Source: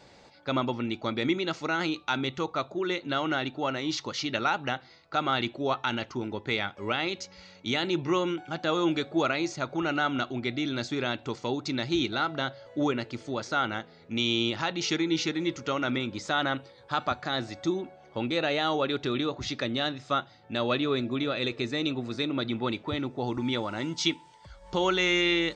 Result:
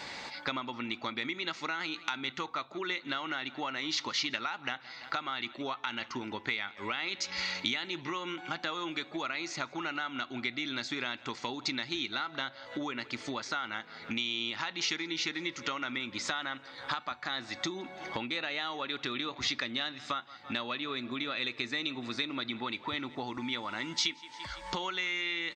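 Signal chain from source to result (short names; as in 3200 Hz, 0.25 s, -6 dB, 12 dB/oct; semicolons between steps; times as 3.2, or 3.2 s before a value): vocal rider 0.5 s; graphic EQ 250/1000/2000/4000 Hz +7/+10/+11/+5 dB; feedback echo 0.168 s, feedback 44%, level -24 dB; compressor 12:1, threshold -35 dBFS, peak gain reduction 25 dB; high shelf 2500 Hz +11 dB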